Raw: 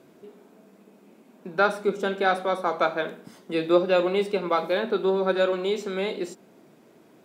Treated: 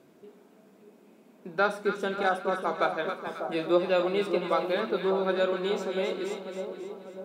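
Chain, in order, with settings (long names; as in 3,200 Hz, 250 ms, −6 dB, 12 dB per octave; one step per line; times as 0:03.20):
0:02.23–0:03.02: downward expander −25 dBFS
0:02.29–0:02.61: time-frequency box erased 1,700–4,700 Hz
echo with a time of its own for lows and highs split 1,100 Hz, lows 596 ms, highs 269 ms, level −7 dB
level −4 dB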